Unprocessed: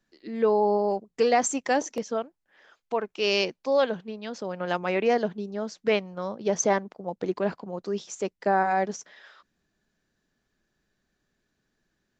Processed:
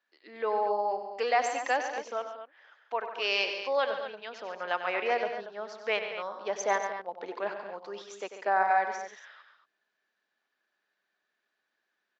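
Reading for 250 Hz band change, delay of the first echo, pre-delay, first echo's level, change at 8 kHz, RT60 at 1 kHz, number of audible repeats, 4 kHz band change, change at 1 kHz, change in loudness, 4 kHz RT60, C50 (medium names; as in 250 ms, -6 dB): -17.0 dB, 94 ms, no reverb, -10.0 dB, -11.0 dB, no reverb, 4, -2.0 dB, -1.0 dB, -4.0 dB, no reverb, no reverb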